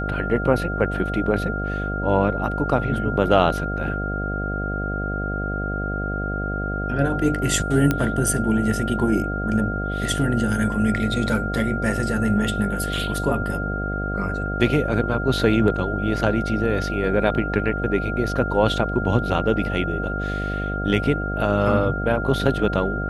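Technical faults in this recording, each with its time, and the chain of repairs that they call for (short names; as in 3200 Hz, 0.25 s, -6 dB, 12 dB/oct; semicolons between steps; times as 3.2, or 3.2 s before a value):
buzz 50 Hz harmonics 15 -27 dBFS
tone 1400 Hz -28 dBFS
7.91 pop -7 dBFS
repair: de-click; notch 1400 Hz, Q 30; de-hum 50 Hz, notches 15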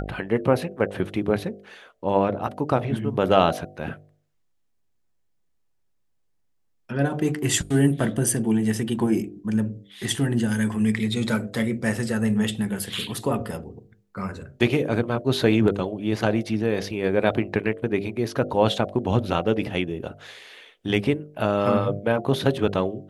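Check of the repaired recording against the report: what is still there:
none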